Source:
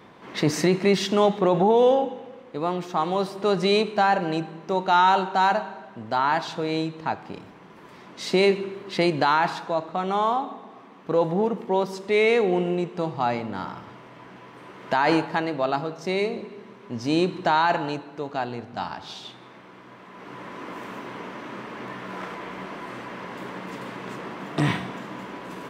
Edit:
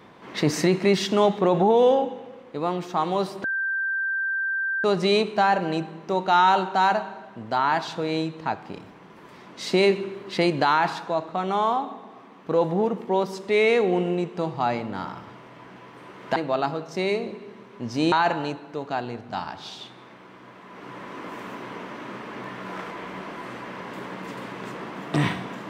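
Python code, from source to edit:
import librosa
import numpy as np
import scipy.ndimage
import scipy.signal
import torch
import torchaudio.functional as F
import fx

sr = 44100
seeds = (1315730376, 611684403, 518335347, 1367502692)

y = fx.edit(x, sr, fx.insert_tone(at_s=3.44, length_s=1.4, hz=1570.0, db=-23.0),
    fx.cut(start_s=14.96, length_s=0.5),
    fx.cut(start_s=17.22, length_s=0.34), tone=tone)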